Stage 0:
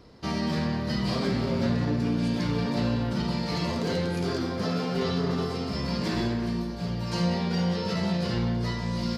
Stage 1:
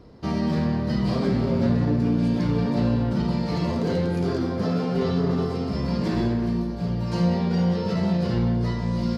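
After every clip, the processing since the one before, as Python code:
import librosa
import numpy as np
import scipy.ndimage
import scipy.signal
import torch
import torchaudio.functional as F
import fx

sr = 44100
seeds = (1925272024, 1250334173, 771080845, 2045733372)

y = fx.tilt_shelf(x, sr, db=5.0, hz=1200.0)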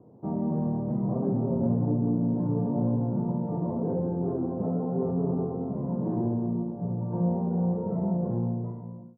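y = fx.fade_out_tail(x, sr, length_s=0.9)
y = scipy.signal.sosfilt(scipy.signal.ellip(3, 1.0, 60, [110.0, 870.0], 'bandpass', fs=sr, output='sos'), y)
y = F.gain(torch.from_numpy(y), -3.5).numpy()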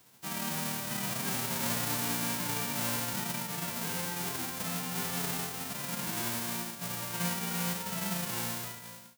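y = fx.envelope_flatten(x, sr, power=0.1)
y = F.gain(torch.from_numpy(y), -7.0).numpy()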